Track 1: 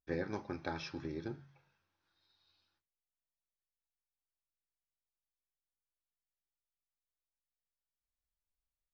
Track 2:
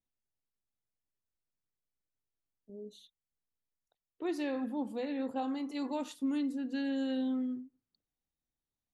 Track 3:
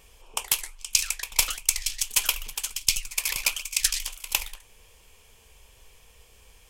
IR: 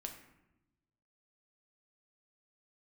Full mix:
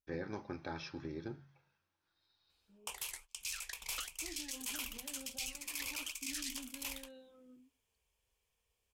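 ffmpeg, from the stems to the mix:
-filter_complex "[0:a]volume=-2dB[link_01];[1:a]alimiter=level_in=7.5dB:limit=-24dB:level=0:latency=1,volume=-7.5dB,asplit=2[link_02][link_03];[link_03]adelay=4.4,afreqshift=-0.63[link_04];[link_02][link_04]amix=inputs=2:normalize=1,volume=-11.5dB[link_05];[2:a]highpass=45,agate=range=-19dB:threshold=-43dB:ratio=16:detection=peak,adelay=2500,volume=-8dB[link_06];[link_01][link_05][link_06]amix=inputs=3:normalize=0,alimiter=level_in=5.5dB:limit=-24dB:level=0:latency=1:release=18,volume=-5.5dB"

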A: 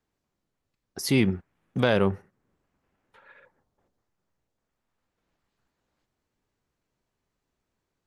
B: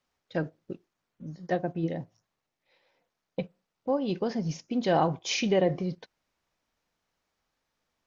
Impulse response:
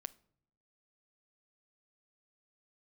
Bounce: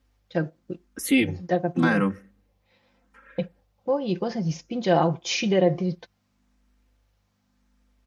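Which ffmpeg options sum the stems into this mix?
-filter_complex "[0:a]aeval=exprs='val(0)+0.000562*(sin(2*PI*50*n/s)+sin(2*PI*2*50*n/s)/2+sin(2*PI*3*50*n/s)/3+sin(2*PI*4*50*n/s)/4+sin(2*PI*5*50*n/s)/5)':channel_layout=same,aecho=1:1:3.8:0.98,asplit=2[link_01][link_02];[link_02]afreqshift=0.87[link_03];[link_01][link_03]amix=inputs=2:normalize=1,volume=-1dB,asplit=2[link_04][link_05];[link_05]volume=-6.5dB[link_06];[1:a]aecho=1:1:5.8:0.51,volume=2dB[link_07];[2:a]atrim=start_sample=2205[link_08];[link_06][link_08]afir=irnorm=-1:irlink=0[link_09];[link_04][link_07][link_09]amix=inputs=3:normalize=0,highpass=48"

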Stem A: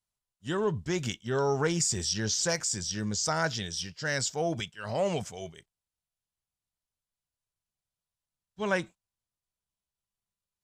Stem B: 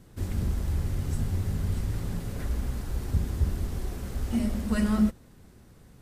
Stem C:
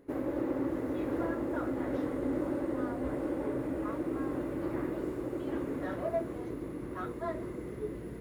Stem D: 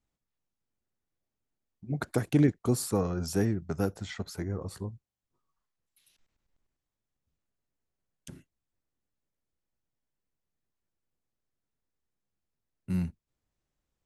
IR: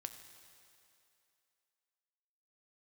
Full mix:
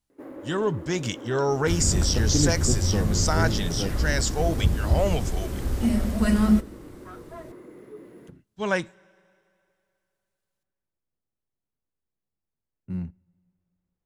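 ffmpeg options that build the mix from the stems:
-filter_complex "[0:a]volume=2.5dB,asplit=2[link_01][link_02];[link_02]volume=-14dB[link_03];[1:a]adelay=1500,volume=2.5dB,asplit=2[link_04][link_05];[link_05]volume=-8dB[link_06];[2:a]highpass=200,asoftclip=type=tanh:threshold=-29dB,adelay=100,volume=-4dB,asplit=2[link_07][link_08];[link_08]volume=-24dB[link_09];[3:a]lowpass=frequency=1100:poles=1,volume=-2dB,asplit=2[link_10][link_11];[link_11]volume=-17dB[link_12];[4:a]atrim=start_sample=2205[link_13];[link_03][link_06][link_09][link_12]amix=inputs=4:normalize=0[link_14];[link_14][link_13]afir=irnorm=-1:irlink=0[link_15];[link_01][link_04][link_07][link_10][link_15]amix=inputs=5:normalize=0"

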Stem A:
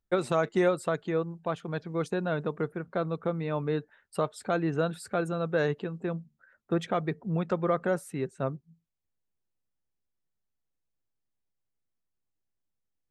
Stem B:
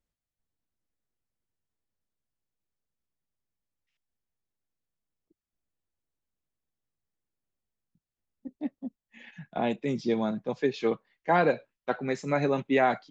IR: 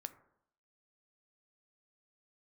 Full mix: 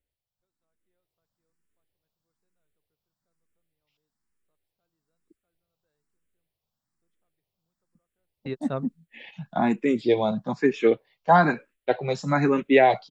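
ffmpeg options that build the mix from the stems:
-filter_complex "[0:a]equalizer=frequency=3800:width=1.5:gain=7,adelay=300,volume=-6.5dB[link_01];[1:a]bandreject=frequency=6300:width=11,asplit=2[link_02][link_03];[link_03]afreqshift=1.1[link_04];[link_02][link_04]amix=inputs=2:normalize=1,volume=1.5dB,asplit=2[link_05][link_06];[link_06]apad=whole_len=591016[link_07];[link_01][link_07]sidechaingate=range=-56dB:threshold=-54dB:ratio=16:detection=peak[link_08];[link_08][link_05]amix=inputs=2:normalize=0,dynaudnorm=framelen=580:gausssize=3:maxgain=7dB"

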